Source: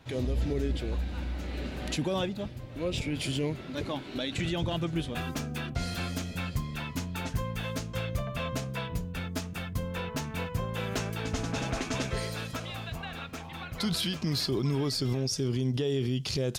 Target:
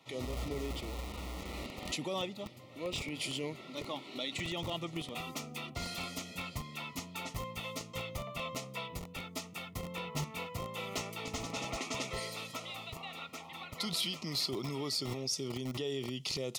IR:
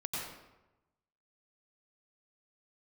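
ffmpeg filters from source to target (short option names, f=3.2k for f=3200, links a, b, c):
-filter_complex "[0:a]asplit=3[a][b][c];[a]afade=t=out:st=9.82:d=0.02[d];[b]equalizer=f=150:w=5.2:g=14,afade=t=in:st=9.82:d=0.02,afade=t=out:st=10.23:d=0.02[e];[c]afade=t=in:st=10.23:d=0.02[f];[d][e][f]amix=inputs=3:normalize=0,acrossover=split=110[g][h];[g]acrusher=bits=5:mix=0:aa=0.000001[i];[i][h]amix=inputs=2:normalize=0,asuperstop=centerf=1600:order=12:qfactor=4.1,lowshelf=f=480:g=-9,volume=-2dB"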